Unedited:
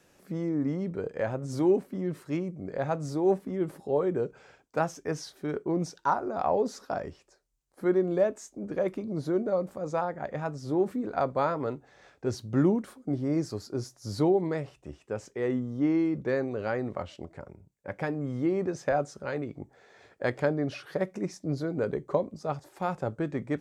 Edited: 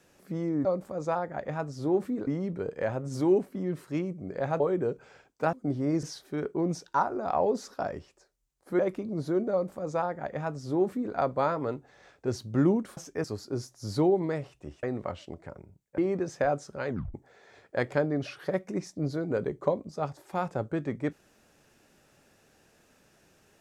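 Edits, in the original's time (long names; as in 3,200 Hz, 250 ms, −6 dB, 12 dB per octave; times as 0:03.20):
0:02.98–0:03.94: remove
0:04.87–0:05.14: swap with 0:12.96–0:13.46
0:07.90–0:08.78: remove
0:09.51–0:11.13: duplicate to 0:00.65
0:15.05–0:16.74: remove
0:17.89–0:18.45: remove
0:19.35: tape stop 0.26 s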